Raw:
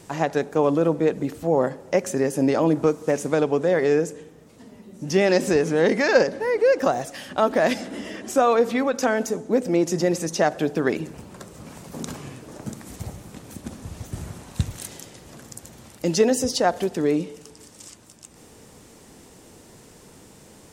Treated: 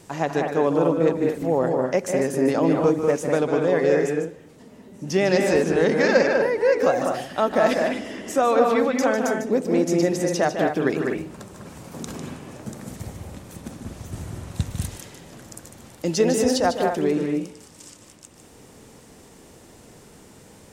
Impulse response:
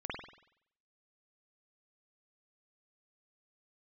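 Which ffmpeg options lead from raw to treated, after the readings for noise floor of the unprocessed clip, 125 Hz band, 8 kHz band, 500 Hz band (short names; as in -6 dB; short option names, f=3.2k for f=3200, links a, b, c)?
-49 dBFS, +0.5 dB, -1.0 dB, +1.0 dB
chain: -filter_complex "[0:a]asplit=2[a][b];[1:a]atrim=start_sample=2205,afade=t=out:st=0.16:d=0.01,atrim=end_sample=7497,adelay=150[c];[b][c]afir=irnorm=-1:irlink=0,volume=-3.5dB[d];[a][d]amix=inputs=2:normalize=0,volume=-1.5dB"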